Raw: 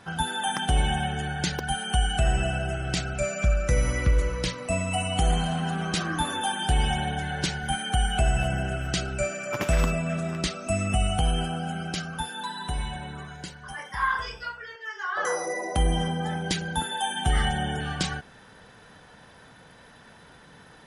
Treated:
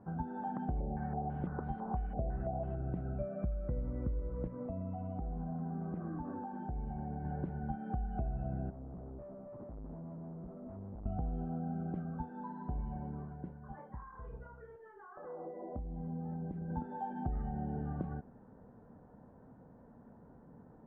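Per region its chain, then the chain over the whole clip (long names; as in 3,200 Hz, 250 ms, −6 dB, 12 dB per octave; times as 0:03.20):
0:00.80–0:02.75: linear delta modulator 32 kbit/s, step −28.5 dBFS + low-pass on a step sequencer 6 Hz 560–4,400 Hz
0:04.47–0:07.25: inverse Chebyshev low-pass filter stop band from 6,800 Hz, stop band 50 dB + downward compressor 5 to 1, threshold −31 dBFS
0:08.70–0:11.06: Savitzky-Golay smoothing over 65 samples + tube saturation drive 41 dB, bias 0.65
0:13.88–0:16.70: low-shelf EQ 160 Hz +6.5 dB + downward compressor 10 to 1, threshold −33 dBFS + double-tracking delay 29 ms −13 dB
whole clip: Bessel low-pass filter 620 Hz, order 4; parametric band 240 Hz +7 dB 0.4 octaves; downward compressor 5 to 1, threshold −30 dBFS; level −4 dB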